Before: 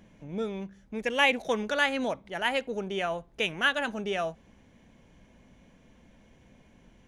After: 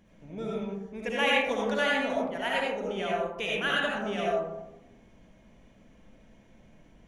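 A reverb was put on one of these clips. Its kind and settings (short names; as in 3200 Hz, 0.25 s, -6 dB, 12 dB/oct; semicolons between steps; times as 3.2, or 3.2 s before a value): digital reverb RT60 1 s, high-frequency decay 0.3×, pre-delay 35 ms, DRR -5 dB; gain -6 dB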